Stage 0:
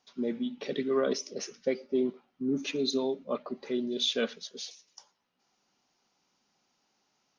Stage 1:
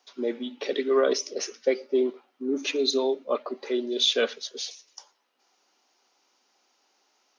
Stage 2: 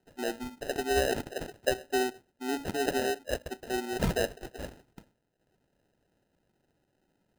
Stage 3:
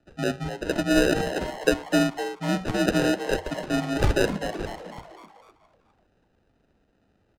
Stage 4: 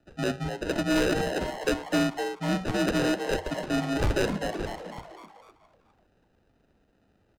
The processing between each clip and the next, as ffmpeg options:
-af "highpass=f=310:w=0.5412,highpass=f=310:w=1.3066,volume=2.11"
-af "acrusher=samples=39:mix=1:aa=0.000001,volume=0.562"
-filter_complex "[0:a]adynamicsmooth=sensitivity=2.5:basefreq=5400,afreqshift=-92,asplit=6[s0][s1][s2][s3][s4][s5];[s1]adelay=251,afreqshift=150,volume=0.316[s6];[s2]adelay=502,afreqshift=300,volume=0.151[s7];[s3]adelay=753,afreqshift=450,volume=0.0724[s8];[s4]adelay=1004,afreqshift=600,volume=0.0351[s9];[s5]adelay=1255,afreqshift=750,volume=0.0168[s10];[s0][s6][s7][s8][s9][s10]amix=inputs=6:normalize=0,volume=2.24"
-af "asoftclip=type=tanh:threshold=0.119"

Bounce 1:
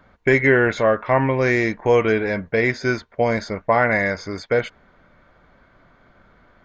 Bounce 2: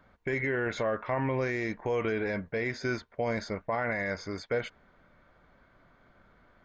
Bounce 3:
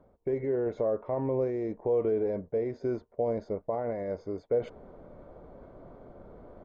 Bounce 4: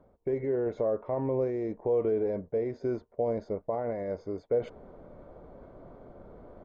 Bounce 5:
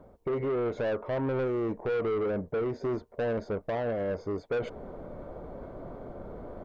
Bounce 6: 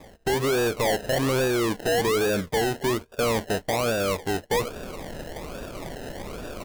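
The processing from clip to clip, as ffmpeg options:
-af "alimiter=limit=0.211:level=0:latency=1:release=38,volume=0.422"
-af "firequalizer=gain_entry='entry(200,0);entry(430,8);entry(1600,-18)':delay=0.05:min_phase=1,areverse,acompressor=mode=upward:threshold=0.0251:ratio=2.5,areverse,volume=0.708"
-af anull
-filter_complex "[0:a]asplit=2[s0][s1];[s1]alimiter=level_in=1.88:limit=0.0631:level=0:latency=1:release=256,volume=0.531,volume=0.708[s2];[s0][s2]amix=inputs=2:normalize=0,asoftclip=type=tanh:threshold=0.0355,volume=1.41"
-af "acrusher=samples=30:mix=1:aa=0.000001:lfo=1:lforange=18:lforate=1.2,volume=2"

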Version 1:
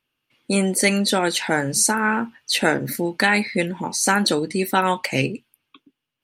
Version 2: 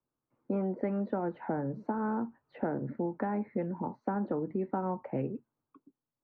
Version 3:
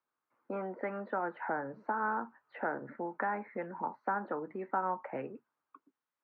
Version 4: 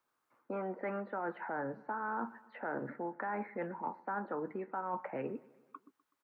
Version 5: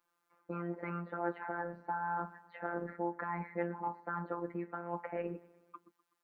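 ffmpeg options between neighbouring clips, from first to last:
-filter_complex "[0:a]lowpass=f=1100:w=0.5412,lowpass=f=1100:w=1.3066,acrossover=split=110|300|740[s0][s1][s2][s3];[s0]acompressor=threshold=0.00316:ratio=4[s4];[s1]acompressor=threshold=0.0355:ratio=4[s5];[s2]acompressor=threshold=0.0282:ratio=4[s6];[s3]acompressor=threshold=0.0178:ratio=4[s7];[s4][s5][s6][s7]amix=inputs=4:normalize=0,volume=0.531"
-af "bandpass=f=1500:t=q:w=1.5:csg=0,volume=2.82"
-af "areverse,acompressor=threshold=0.00794:ratio=6,areverse,aecho=1:1:125|250|375|500:0.075|0.0435|0.0252|0.0146,volume=2.11"
-af "afftfilt=real='hypot(re,im)*cos(PI*b)':imag='0':win_size=1024:overlap=0.75,volume=1.58"

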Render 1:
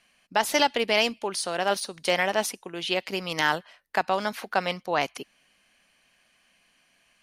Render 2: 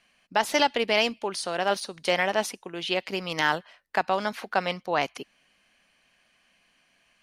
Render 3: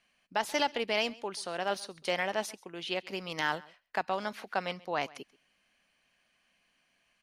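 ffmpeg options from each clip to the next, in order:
-af "highshelf=f=8800:g=-9"
-af "aecho=1:1:133:0.075,volume=0.447"

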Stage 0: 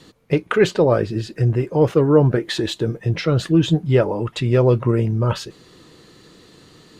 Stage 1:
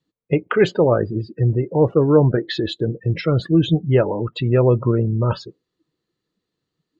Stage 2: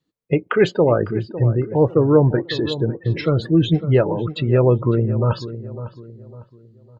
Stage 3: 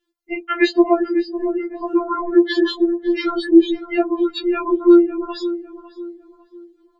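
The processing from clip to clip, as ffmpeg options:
-af "afftdn=nr=32:nf=-29,lowpass=7800"
-filter_complex "[0:a]asplit=2[s0][s1];[s1]adelay=553,lowpass=f=1400:p=1,volume=0.224,asplit=2[s2][s3];[s3]adelay=553,lowpass=f=1400:p=1,volume=0.38,asplit=2[s4][s5];[s5]adelay=553,lowpass=f=1400:p=1,volume=0.38,asplit=2[s6][s7];[s7]adelay=553,lowpass=f=1400:p=1,volume=0.38[s8];[s0][s2][s4][s6][s8]amix=inputs=5:normalize=0"
-af "afftfilt=real='re*4*eq(mod(b,16),0)':imag='im*4*eq(mod(b,16),0)':win_size=2048:overlap=0.75,volume=1.78"

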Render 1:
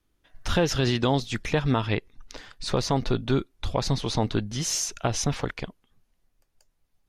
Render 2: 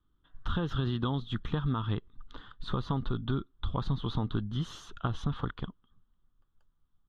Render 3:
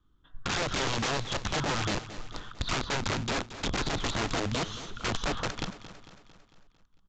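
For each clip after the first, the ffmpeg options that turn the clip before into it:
-af "firequalizer=gain_entry='entry(180,0);entry(620,-14);entry(1200,3);entry(2300,-23);entry(3300,-2);entry(5100,-28)':delay=0.05:min_phase=1,acompressor=threshold=0.0501:ratio=6"
-af "aeval=exprs='(mod(31.6*val(0)+1,2)-1)/31.6':c=same,aecho=1:1:225|450|675|900|1125|1350:0.2|0.11|0.0604|0.0332|0.0183|0.01,aresample=16000,aresample=44100,volume=1.88"

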